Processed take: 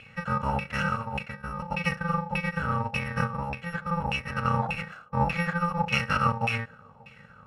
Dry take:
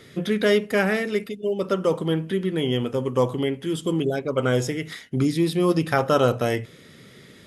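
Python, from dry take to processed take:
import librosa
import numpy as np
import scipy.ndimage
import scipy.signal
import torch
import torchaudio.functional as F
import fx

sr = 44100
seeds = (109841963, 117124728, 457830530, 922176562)

y = fx.bit_reversed(x, sr, seeds[0], block=128)
y = fx.notch(y, sr, hz=2100.0, q=15.0)
y = fx.echo_banded(y, sr, ms=141, feedback_pct=70, hz=450.0, wet_db=-23)
y = fx.filter_lfo_lowpass(y, sr, shape='saw_down', hz=1.7, low_hz=780.0, high_hz=2600.0, q=7.7)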